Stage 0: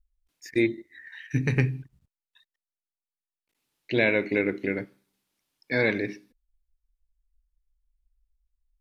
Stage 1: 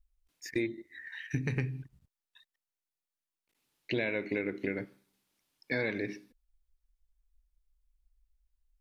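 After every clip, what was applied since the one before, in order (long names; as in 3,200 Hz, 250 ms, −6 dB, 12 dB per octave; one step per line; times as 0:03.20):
downward compressor 4 to 1, threshold −30 dBFS, peak gain reduction 11 dB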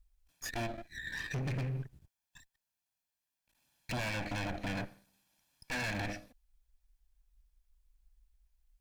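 lower of the sound and its delayed copy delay 1.2 ms
in parallel at −2 dB: brickwall limiter −30.5 dBFS, peak gain reduction 10 dB
on the sum: hard clipping −33 dBFS, distortion −7 dB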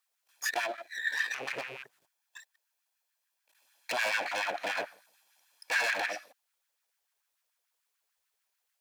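loose part that buzzes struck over −39 dBFS, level −40 dBFS
tilt shelving filter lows −3 dB, about 790 Hz
auto-filter high-pass sine 6.8 Hz 450–1,600 Hz
level +3.5 dB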